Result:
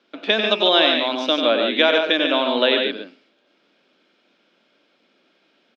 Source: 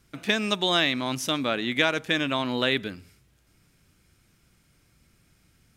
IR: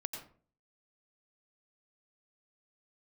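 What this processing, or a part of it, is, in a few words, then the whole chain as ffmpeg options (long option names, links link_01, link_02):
kitchen radio: -af "highpass=frequency=260:width=0.5412,highpass=frequency=260:width=1.3066,highpass=210,equalizer=frequency=220:width_type=q:width=4:gain=3,equalizer=frequency=580:width_type=q:width=4:gain=7,equalizer=frequency=1200:width_type=q:width=4:gain=-3,equalizer=frequency=2000:width_type=q:width=4:gain=-6,equalizer=frequency=3400:width_type=q:width=4:gain=4,lowpass=frequency=4000:width=0.5412,lowpass=frequency=4000:width=1.3066,aecho=1:1:93|143:0.447|0.501,volume=5.5dB"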